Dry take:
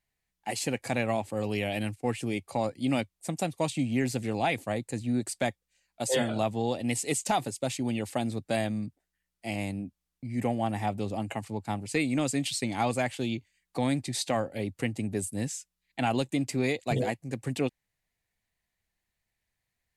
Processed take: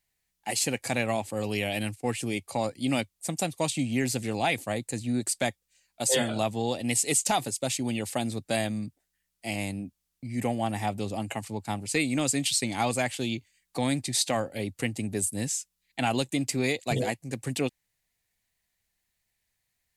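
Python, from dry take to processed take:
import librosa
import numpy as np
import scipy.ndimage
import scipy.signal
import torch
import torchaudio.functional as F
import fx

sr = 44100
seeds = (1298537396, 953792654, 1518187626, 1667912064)

y = fx.high_shelf(x, sr, hz=3100.0, db=8.5)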